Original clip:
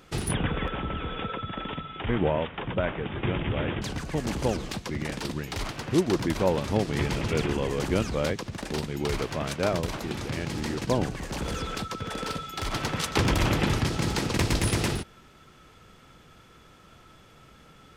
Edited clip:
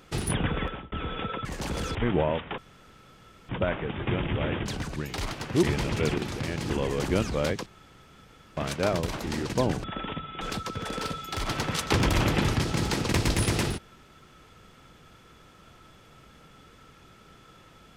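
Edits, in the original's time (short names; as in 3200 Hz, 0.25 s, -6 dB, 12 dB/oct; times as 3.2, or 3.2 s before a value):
0.62–0.92 fade out
1.45–2.02 swap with 11.16–11.66
2.65 insert room tone 0.91 s
4.12–5.34 cut
6.01–6.95 cut
8.46–9.37 room tone
10.07–10.59 move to 7.5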